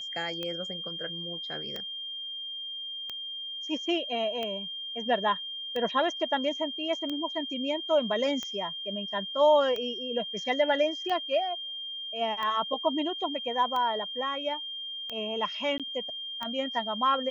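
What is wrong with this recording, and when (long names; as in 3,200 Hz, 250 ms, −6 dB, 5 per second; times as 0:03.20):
scratch tick 45 rpm −21 dBFS
whistle 3,200 Hz −35 dBFS
0:15.78–0:15.80: drop-out 17 ms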